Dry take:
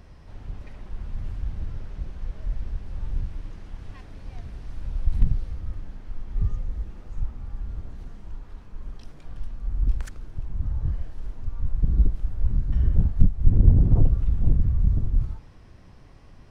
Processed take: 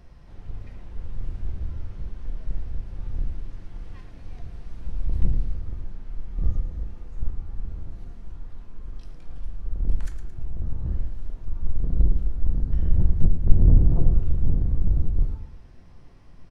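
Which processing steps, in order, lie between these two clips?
octaver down 2 oct, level -3 dB; on a send: feedback echo 0.111 s, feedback 39%, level -11 dB; on the sum: shoebox room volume 170 m³, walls furnished, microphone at 0.81 m; gain -4.5 dB

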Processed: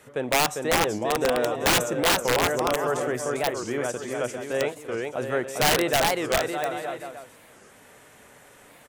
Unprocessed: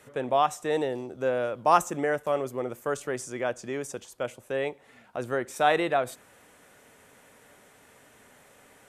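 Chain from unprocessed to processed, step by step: bouncing-ball echo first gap 0.4 s, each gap 0.75×, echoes 5; wrapped overs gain 16.5 dB; record warp 45 rpm, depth 250 cents; gain +2.5 dB

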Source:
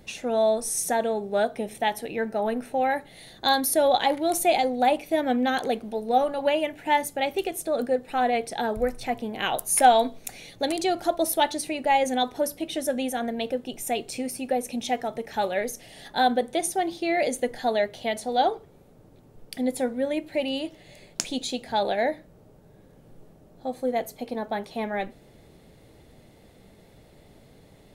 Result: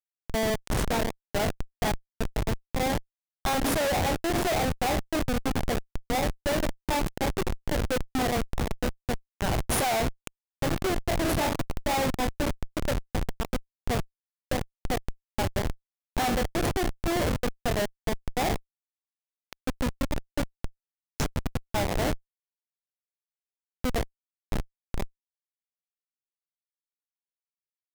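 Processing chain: spectral trails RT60 0.47 s; Schmitt trigger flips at -19.5 dBFS

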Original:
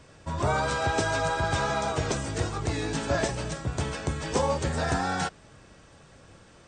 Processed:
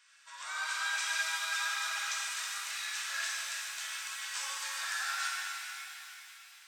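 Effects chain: inverse Chebyshev high-pass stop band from 240 Hz, stop band 80 dB; shimmer reverb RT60 3.1 s, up +7 st, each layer -8 dB, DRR -4 dB; gain -5.5 dB

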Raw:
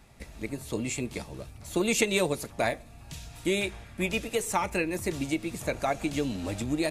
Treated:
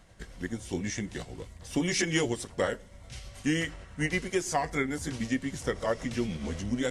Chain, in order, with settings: delay-line pitch shifter -3.5 st

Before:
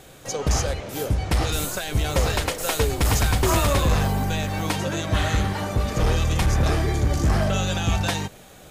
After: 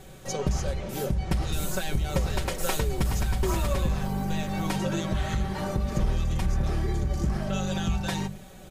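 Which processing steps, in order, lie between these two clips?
low shelf 260 Hz +11 dB; compressor, threshold -16 dBFS, peak gain reduction 9.5 dB; notches 50/100/150/200 Hz; comb 5.3 ms, depth 57%; gain -5.5 dB

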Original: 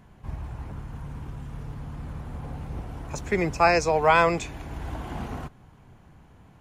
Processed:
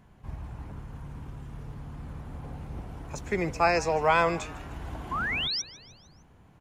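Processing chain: painted sound rise, 5.11–5.62, 990–6000 Hz -26 dBFS; on a send: frequency-shifting echo 0.152 s, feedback 53%, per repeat +120 Hz, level -19 dB; on the sum: gain -4 dB

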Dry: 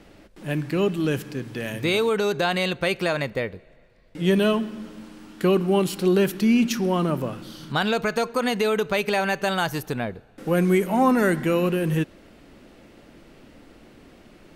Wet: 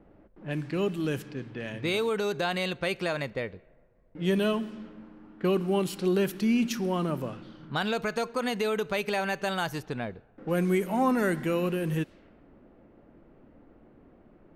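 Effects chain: low-pass opened by the level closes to 1000 Hz, open at -20.5 dBFS; gain -6 dB

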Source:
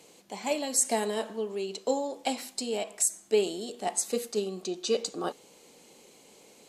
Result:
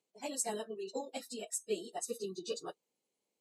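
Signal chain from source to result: spectral noise reduction 23 dB; plain phase-vocoder stretch 0.51×; gain -5.5 dB

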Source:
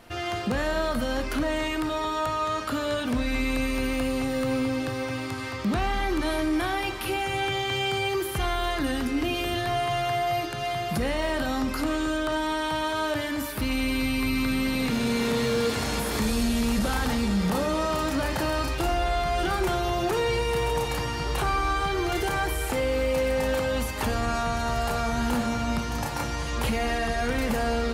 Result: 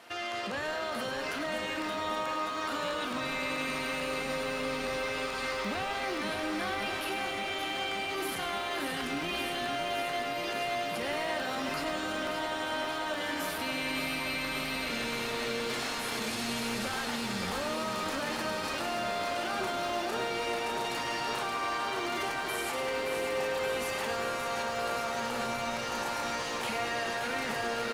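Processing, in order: weighting filter A; limiter -27 dBFS, peak gain reduction 11 dB; frequency-shifting echo 0.102 s, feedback 46%, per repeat -110 Hz, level -10 dB; lo-fi delay 0.575 s, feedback 80%, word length 10-bit, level -7 dB

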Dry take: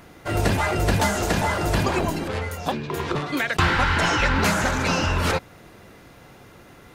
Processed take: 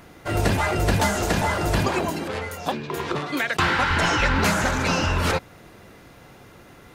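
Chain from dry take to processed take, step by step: 1.88–3.91 HPF 160 Hz 6 dB/oct

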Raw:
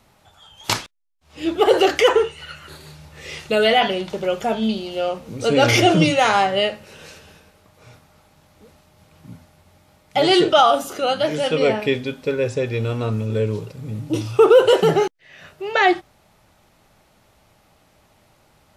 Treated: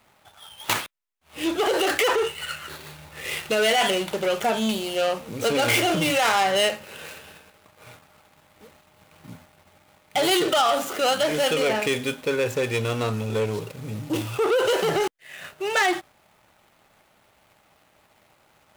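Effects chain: median filter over 9 samples; limiter -14 dBFS, peak gain reduction 10.5 dB; sample leveller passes 1; tilt +2.5 dB/oct

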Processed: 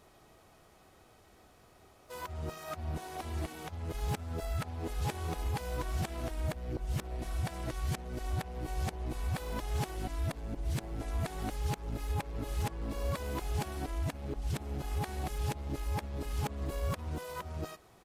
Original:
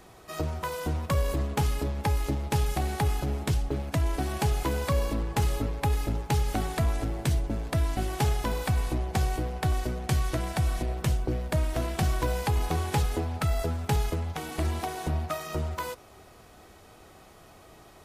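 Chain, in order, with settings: whole clip reversed; harmoniser -5 st -17 dB, +4 st -16 dB; gain -8.5 dB

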